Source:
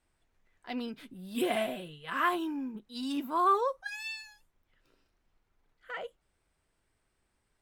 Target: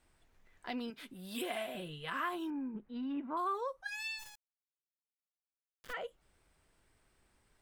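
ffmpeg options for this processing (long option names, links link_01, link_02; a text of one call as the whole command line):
ffmpeg -i in.wav -filter_complex "[0:a]asettb=1/sr,asplit=3[link_01][link_02][link_03];[link_01]atrim=end=0.904[link_04];[link_02]atrim=start=0.9:end=1.75,asetpts=PTS-STARTPTS,afade=type=in:duration=0.004:curve=qsin,afade=type=out:start_time=0.846:duration=0.004:curve=qsin,lowshelf=frequency=340:gain=-11.5[link_05];[link_03]atrim=start=1.746[link_06];[link_04][link_05]acrossfade=duration=0.004:curve1=hsin:curve2=qsin[link_07];[link_07][link_06]acrossfade=duration=0.004:curve1=qsin:curve2=hsin,asettb=1/sr,asplit=3[link_08][link_09][link_10];[link_08]atrim=end=2.504[link_11];[link_09]atrim=start=2.5:end=3.37,asetpts=PTS-STARTPTS,afade=type=in:duration=0.004:curve=qsin,afade=type=out:start_time=0.866:duration=0.004:curve=qsin,lowpass=frequency=2200:width=0.5412,lowpass=frequency=2200:width=1.3066[link_12];[link_10]atrim=start=3.366[link_13];[link_11][link_12]acrossfade=duration=0.004:curve1=hsin:curve2=qsin[link_14];[link_14][link_13]acrossfade=duration=0.004:curve1=qsin:curve2=hsin,acompressor=threshold=-46dB:ratio=2.5,asplit=3[link_15][link_16][link_17];[link_15]afade=type=out:start_time=4.18:duration=0.02[link_18];[link_16]acrusher=bits=6:dc=4:mix=0:aa=0.000001,afade=type=in:start_time=4.18:duration=0.02,afade=type=out:start_time=5.92:duration=0.02[link_19];[link_17]afade=type=in:start_time=5.92:duration=0.02[link_20];[link_18][link_19][link_20]amix=inputs=3:normalize=0,volume=5dB" out.wav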